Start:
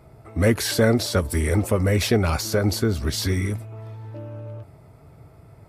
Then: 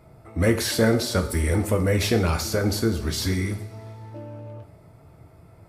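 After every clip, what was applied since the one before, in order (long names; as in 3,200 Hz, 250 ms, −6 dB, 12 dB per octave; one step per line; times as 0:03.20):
coupled-rooms reverb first 0.53 s, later 2.3 s, from −18 dB, DRR 5.5 dB
level −2 dB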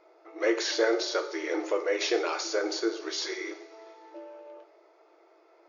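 brick-wall band-pass 310–7,000 Hz
level −3 dB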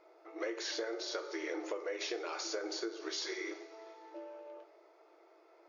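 downward compressor 10 to 1, threshold −32 dBFS, peak gain reduction 13 dB
level −3 dB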